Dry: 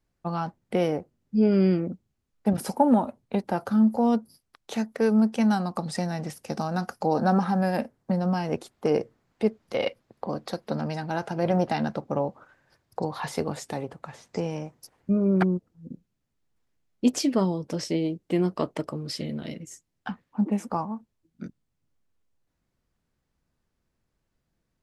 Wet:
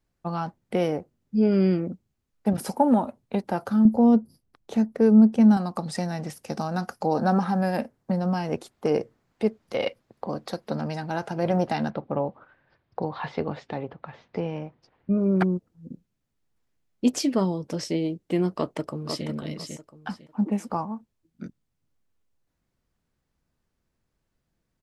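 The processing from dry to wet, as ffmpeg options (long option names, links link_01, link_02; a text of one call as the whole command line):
ffmpeg -i in.wav -filter_complex "[0:a]asettb=1/sr,asplit=3[link_01][link_02][link_03];[link_01]atrim=end=3.854[link_04];[link_02]atrim=start=3.85:end=5.57,asetpts=PTS-STARTPTS,afade=type=in:duration=0.004:curve=qsin,afade=type=out:start_time=1.716:duration=0.004:curve=qsin,tiltshelf=frequency=670:gain=7.5[link_05];[link_03]atrim=start=5.566[link_06];[link_04][link_05]acrossfade=duration=0.004:curve1=hsin:curve2=qsin[link_07];[link_07][link_06]acrossfade=duration=0.004:curve1=qsin:curve2=hsin,asettb=1/sr,asplit=3[link_08][link_09][link_10];[link_08]atrim=end=11.904[link_11];[link_09]atrim=start=11.9:end=15.18,asetpts=PTS-STARTPTS,afade=type=in:duration=0.004:curve=qsin,afade=type=out:start_time=3.276:duration=0.004:curve=qsin,lowpass=frequency=3700:width=0.5412,lowpass=frequency=3700:width=1.3066[link_12];[link_10]atrim=start=15.176[link_13];[link_11][link_12]acrossfade=duration=0.004:curve1=hsin:curve2=qsin[link_14];[link_14][link_13]acrossfade=duration=0.004:curve1=qsin:curve2=hsin,asplit=2[link_15][link_16];[link_16]afade=type=in:start_time=18.51:duration=0.01,afade=type=out:start_time=19.26:duration=0.01,aecho=0:1:500|1000|1500:0.501187|0.125297|0.0313242[link_17];[link_15][link_17]amix=inputs=2:normalize=0" out.wav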